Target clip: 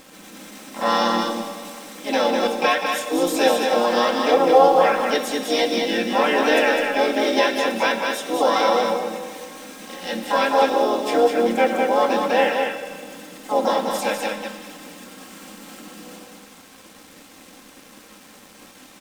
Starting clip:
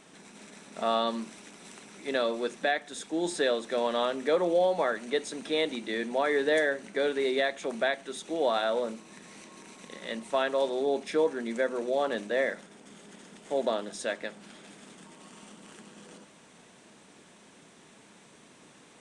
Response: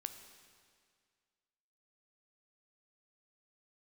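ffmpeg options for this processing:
-filter_complex "[0:a]asplit=4[link_01][link_02][link_03][link_04];[link_02]asetrate=37084,aresample=44100,atempo=1.18921,volume=-7dB[link_05];[link_03]asetrate=58866,aresample=44100,atempo=0.749154,volume=-12dB[link_06];[link_04]asetrate=66075,aresample=44100,atempo=0.66742,volume=-3dB[link_07];[link_01][link_05][link_06][link_07]amix=inputs=4:normalize=0,aecho=1:1:3.8:0.73,acrusher=bits=7:mix=0:aa=0.5,aecho=1:1:203:0.596[link_08];[1:a]atrim=start_sample=2205[link_09];[link_08][link_09]afir=irnorm=-1:irlink=0,volume=7dB"

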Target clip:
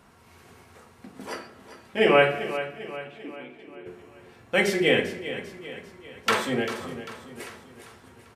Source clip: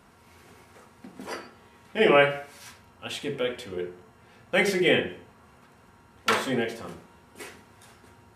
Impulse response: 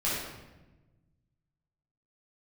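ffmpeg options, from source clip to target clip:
-filter_complex "[0:a]asplit=3[link_01][link_02][link_03];[link_01]afade=type=out:start_time=2.56:duration=0.02[link_04];[link_02]asplit=3[link_05][link_06][link_07];[link_05]bandpass=frequency=300:width_type=q:width=8,volume=0dB[link_08];[link_06]bandpass=frequency=870:width_type=q:width=8,volume=-6dB[link_09];[link_07]bandpass=frequency=2240:width_type=q:width=8,volume=-9dB[link_10];[link_08][link_09][link_10]amix=inputs=3:normalize=0,afade=type=in:start_time=2.56:duration=0.02,afade=type=out:start_time=3.85:duration=0.02[link_11];[link_03]afade=type=in:start_time=3.85:duration=0.02[link_12];[link_04][link_11][link_12]amix=inputs=3:normalize=0,aecho=1:1:395|790|1185|1580|1975:0.237|0.119|0.0593|0.0296|0.0148,asplit=2[link_13][link_14];[1:a]atrim=start_sample=2205[link_15];[link_14][link_15]afir=irnorm=-1:irlink=0,volume=-23dB[link_16];[link_13][link_16]amix=inputs=2:normalize=0"

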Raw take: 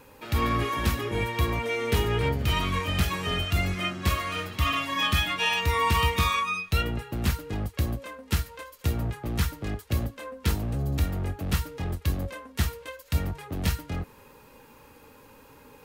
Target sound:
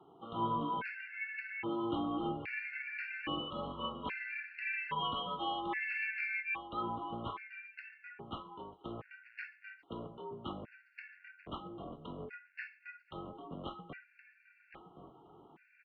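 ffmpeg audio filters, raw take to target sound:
ffmpeg -i in.wav -filter_complex "[0:a]highpass=frequency=290:width_type=q:width=0.5412,highpass=frequency=290:width_type=q:width=1.307,lowpass=frequency=3000:width_type=q:width=0.5176,lowpass=frequency=3000:width_type=q:width=0.7071,lowpass=frequency=3000:width_type=q:width=1.932,afreqshift=-120,asplit=2[link_01][link_02];[link_02]adelay=1070,lowpass=frequency=1600:poles=1,volume=-9dB,asplit=2[link_03][link_04];[link_04]adelay=1070,lowpass=frequency=1600:poles=1,volume=0.33,asplit=2[link_05][link_06];[link_06]adelay=1070,lowpass=frequency=1600:poles=1,volume=0.33,asplit=2[link_07][link_08];[link_08]adelay=1070,lowpass=frequency=1600:poles=1,volume=0.33[link_09];[link_01][link_03][link_05][link_07][link_09]amix=inputs=5:normalize=0,afftfilt=real='re*gt(sin(2*PI*0.61*pts/sr)*(1-2*mod(floor(b*sr/1024/1400),2)),0)':imag='im*gt(sin(2*PI*0.61*pts/sr)*(1-2*mod(floor(b*sr/1024/1400),2)),0)':win_size=1024:overlap=0.75,volume=-5.5dB" out.wav

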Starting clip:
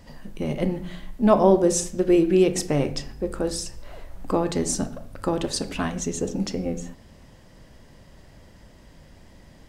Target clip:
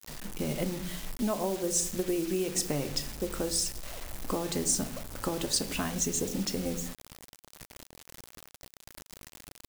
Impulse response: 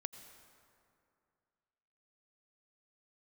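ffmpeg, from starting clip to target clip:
-af "acompressor=threshold=-25dB:ratio=6,acrusher=bits=6:mix=0:aa=0.000001,highshelf=frequency=4200:gain=9,volume=-3dB"

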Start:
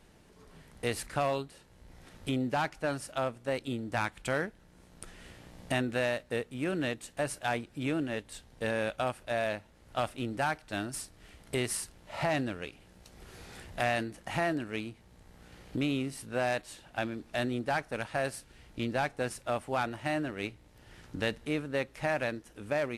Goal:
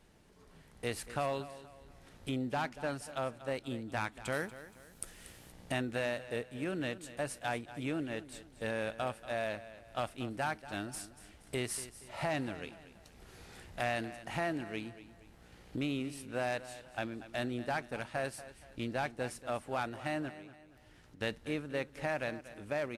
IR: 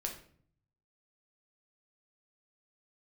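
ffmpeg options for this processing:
-filter_complex "[0:a]asettb=1/sr,asplit=3[link_01][link_02][link_03];[link_01]atrim=end=4.324[link_04];[link_02]atrim=start=4.32:end=5.52,asetpts=PTS-STARTPTS,afade=type=in:duration=0.004:curve=qsin,afade=type=out:start_time=1.196:duration=0.004:curve=qsin,aemphasis=mode=production:type=50fm[link_05];[link_03]atrim=start=5.516[link_06];[link_04][link_05]acrossfade=duration=0.004:curve1=hsin:curve2=qsin[link_07];[link_07][link_06]acrossfade=duration=0.004:curve1=qsin:curve2=hsin,asettb=1/sr,asplit=3[link_08][link_09][link_10];[link_08]atrim=end=20.294[link_11];[link_09]atrim=start=20.29:end=21.21,asetpts=PTS-STARTPTS,afade=type=in:duration=0.004:curve=qsin,afade=type=out:start_time=0.916:duration=0.004:curve=qsin,acompressor=threshold=-53dB:ratio=4[link_12];[link_10]atrim=start=21.206[link_13];[link_11][link_12]acrossfade=duration=0.004:curve1=hsin:curve2=qsin[link_14];[link_14][link_13]acrossfade=duration=0.004:curve1=qsin:curve2=hsin,aecho=1:1:236|472|708|944:0.178|0.0694|0.027|0.0105,volume=-4.5dB"

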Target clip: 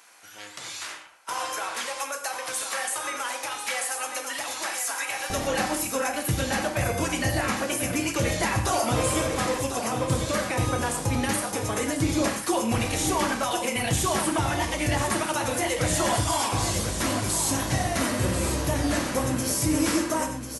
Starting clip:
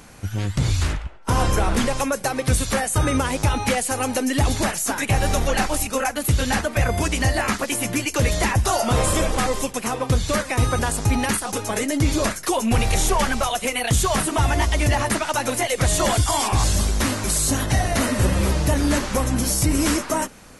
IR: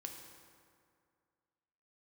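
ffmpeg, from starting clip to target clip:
-filter_complex "[0:a]asetnsamples=nb_out_samples=441:pad=0,asendcmd='5.3 highpass f 100',highpass=890,aecho=1:1:1044:0.376[link_01];[1:a]atrim=start_sample=2205,afade=type=out:start_time=0.18:duration=0.01,atrim=end_sample=8379[link_02];[link_01][link_02]afir=irnorm=-1:irlink=0"

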